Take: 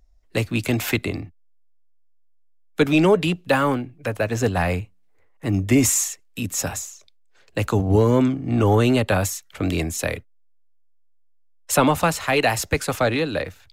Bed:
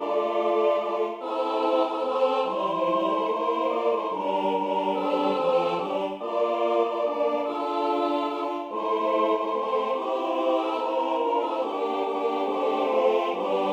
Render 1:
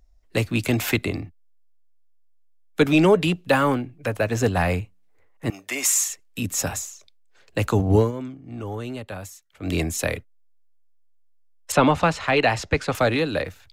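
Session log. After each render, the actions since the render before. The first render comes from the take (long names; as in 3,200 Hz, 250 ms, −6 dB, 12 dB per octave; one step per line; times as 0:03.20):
0:05.50–0:06.10: high-pass filter 860 Hz
0:07.99–0:09.74: duck −14.5 dB, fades 0.13 s
0:11.72–0:12.95: low-pass filter 4,600 Hz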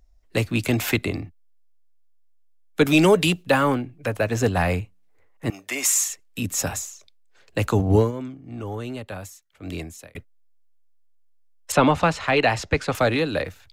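0:02.85–0:03.42: high-shelf EQ 5,100 Hz → 3,300 Hz +11.5 dB
0:09.18–0:10.15: fade out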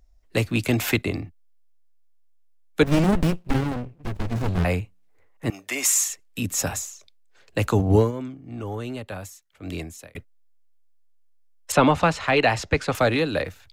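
0:00.56–0:01.06: downward expander −31 dBFS
0:02.83–0:04.65: windowed peak hold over 65 samples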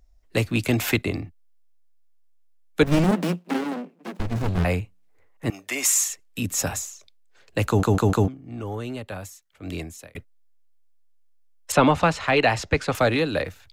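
0:03.11–0:04.20: Butterworth high-pass 170 Hz 96 dB per octave
0:07.68: stutter in place 0.15 s, 4 plays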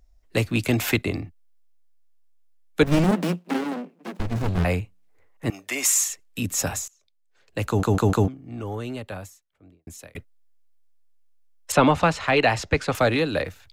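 0:06.88–0:08.04: fade in, from −23.5 dB
0:09.05–0:09.87: fade out and dull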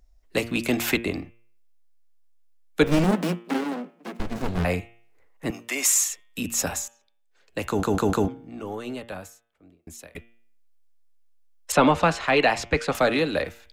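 parametric band 110 Hz −13 dB 0.48 octaves
hum removal 116.3 Hz, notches 31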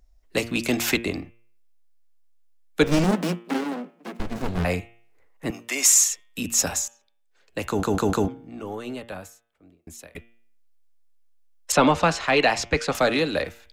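dynamic equaliser 5,800 Hz, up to +6 dB, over −42 dBFS, Q 1.2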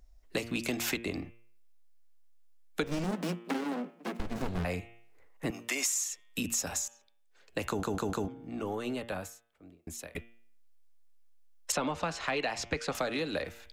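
downward compressor 6 to 1, threshold −30 dBFS, peak gain reduction 16 dB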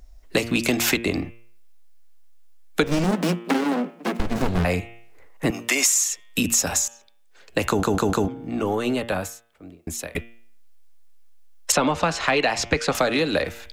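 level +11.5 dB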